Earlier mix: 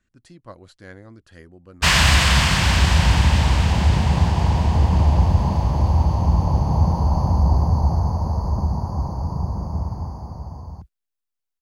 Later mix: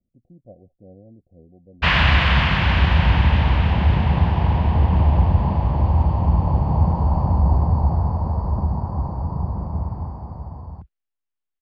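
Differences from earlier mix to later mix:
speech: add rippled Chebyshev low-pass 750 Hz, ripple 6 dB; master: add LPF 3200 Hz 24 dB/oct

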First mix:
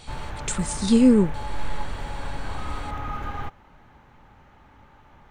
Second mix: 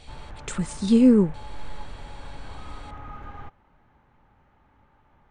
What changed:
background -8.0 dB; master: add high shelf 3900 Hz -10 dB

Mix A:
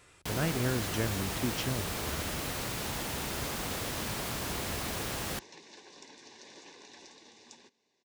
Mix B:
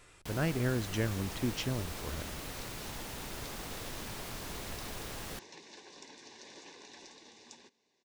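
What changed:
first sound -7.5 dB; master: remove HPF 50 Hz

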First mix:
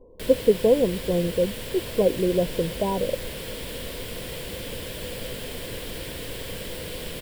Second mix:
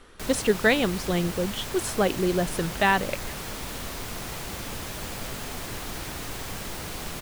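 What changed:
speech: remove brick-wall FIR low-pass 1100 Hz; master: add thirty-one-band EQ 500 Hz -12 dB, 800 Hz +11 dB, 1250 Hz +11 dB, 3150 Hz -6 dB, 6300 Hz +9 dB

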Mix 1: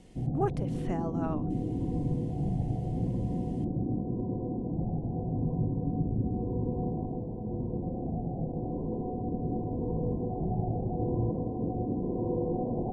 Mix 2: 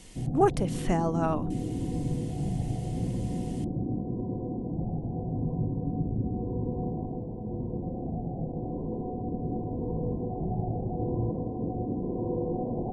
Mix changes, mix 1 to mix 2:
speech +7.5 dB; master: add high shelf 4300 Hz +10.5 dB

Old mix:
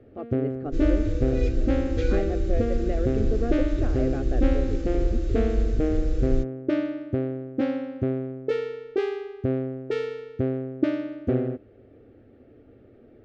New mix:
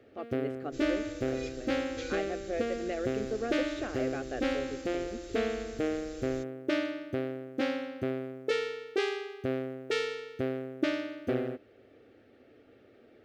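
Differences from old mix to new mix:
second sound -8.0 dB; master: add tilt +4 dB/oct

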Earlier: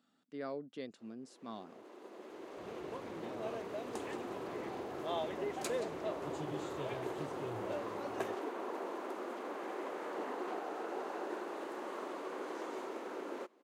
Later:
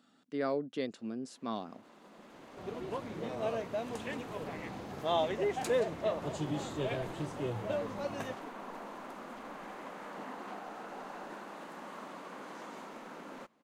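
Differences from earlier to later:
speech +8.5 dB; first sound: remove resonant high-pass 370 Hz, resonance Q 3.7; second sound +8.0 dB

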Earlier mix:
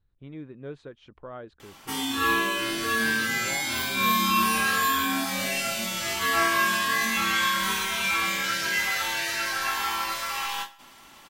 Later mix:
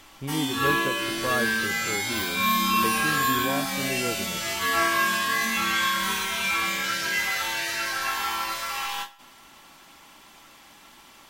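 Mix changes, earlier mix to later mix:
speech +10.0 dB; background: entry -1.60 s

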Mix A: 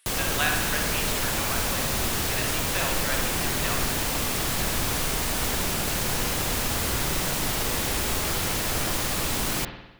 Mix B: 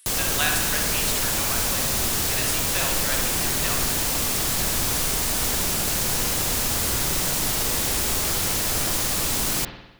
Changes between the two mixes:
background: add high shelf 4400 Hz -5 dB; master: add tone controls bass 0 dB, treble +10 dB

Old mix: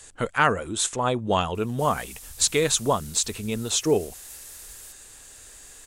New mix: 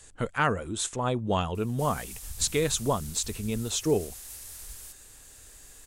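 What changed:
speech -6.0 dB; master: add low shelf 280 Hz +7 dB

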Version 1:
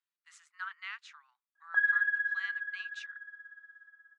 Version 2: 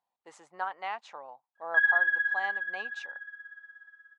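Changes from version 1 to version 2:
speech: remove steep high-pass 1300 Hz 48 dB/oct; background: remove air absorption 470 m

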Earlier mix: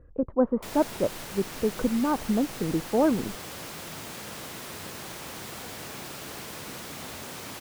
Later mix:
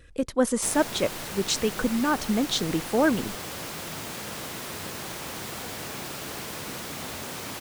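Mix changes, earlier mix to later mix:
speech: remove LPF 1100 Hz 24 dB/oct; background +3.5 dB

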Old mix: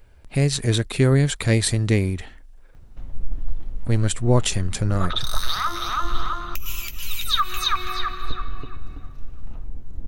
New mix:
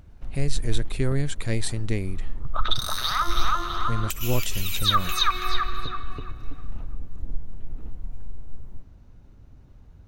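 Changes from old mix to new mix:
speech -8.5 dB; first sound: entry -2.75 s; second sound: entry -2.45 s

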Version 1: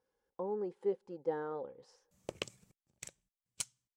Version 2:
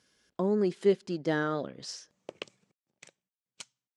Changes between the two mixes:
speech: remove double band-pass 650 Hz, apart 0.7 oct; master: add BPF 210–4900 Hz

